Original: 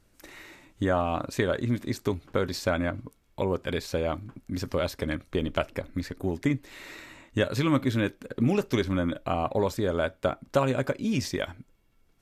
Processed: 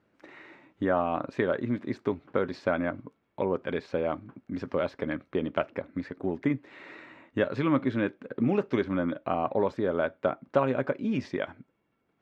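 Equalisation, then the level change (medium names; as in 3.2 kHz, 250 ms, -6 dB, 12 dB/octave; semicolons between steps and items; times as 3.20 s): band-pass 170–2100 Hz; 0.0 dB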